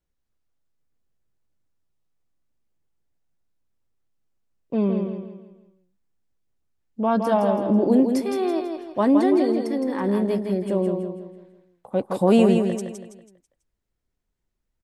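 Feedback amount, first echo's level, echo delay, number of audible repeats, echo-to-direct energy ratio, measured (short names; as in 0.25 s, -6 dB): 40%, -5.5 dB, 0.164 s, 4, -4.5 dB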